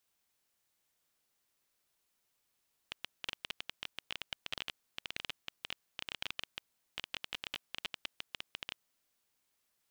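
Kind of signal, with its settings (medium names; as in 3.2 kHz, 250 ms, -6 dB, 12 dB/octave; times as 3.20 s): random clicks 15 per s -20.5 dBFS 5.93 s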